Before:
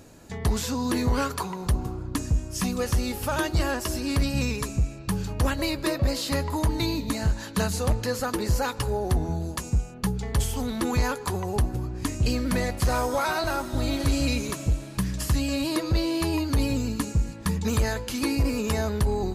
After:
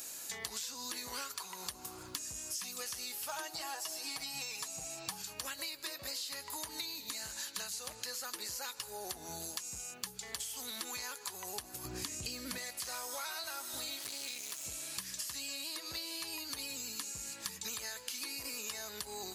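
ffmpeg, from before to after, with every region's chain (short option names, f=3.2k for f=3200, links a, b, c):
-filter_complex "[0:a]asettb=1/sr,asplit=3[a][b][c];[a]atrim=end=3.294[d];[b]atrim=start=3.29:end=5.22,asetpts=PTS-STARTPTS,afade=t=in:d=0.004:c=qsin,afade=t=out:st=1.926:d=0.004:c=qsin,equalizer=f=770:t=o:w=0.4:g=14.5,aecho=1:1:6.3:0.75,atrim=end_sample=85113[e];[c]atrim=start=5.216[f];[d][e]acrossfade=d=0.004:c1=hsin:c2=qsin[g];[g][f]acrossfade=d=0.004:c1=qsin:c2=hsin,asettb=1/sr,asplit=3[h][i][j];[h]atrim=end=11.854[k];[i]atrim=start=11.85:end=12.58,asetpts=PTS-STARTPTS,afade=t=in:d=0.004:c=qsin,afade=t=out:st=0.726:d=0.004:c=qsin,lowshelf=f=420:g=11,acompressor=mode=upward:threshold=-15dB:ratio=2.5:attack=3.2:release=140:knee=2.83:detection=peak[l];[j]atrim=start=12.576[m];[k][l]acrossfade=d=0.004:c1=hsin:c2=qsin[n];[n][m]acrossfade=d=0.004:c1=qsin:c2=hsin,asettb=1/sr,asplit=3[o][p][q];[o]atrim=end=13.994[r];[p]atrim=start=13.99:end=14.65,asetpts=PTS-STARTPTS,afade=t=in:d=0.004:c=qsin,afade=t=out:st=0.656:d=0.004:c=qsin,highpass=f=80:w=0.5412,highpass=f=80:w=1.3066,aeval=exprs='max(val(0),0)':c=same[s];[q]atrim=start=14.646[t];[r][s]acrossfade=d=0.004:c1=hsin:c2=qsin[u];[u][t]acrossfade=d=0.004:c1=qsin:c2=hsin,acrossover=split=6600[v][w];[w]acompressor=threshold=-45dB:ratio=4:attack=1:release=60[x];[v][x]amix=inputs=2:normalize=0,aderivative,acompressor=threshold=-53dB:ratio=10,volume=14.5dB"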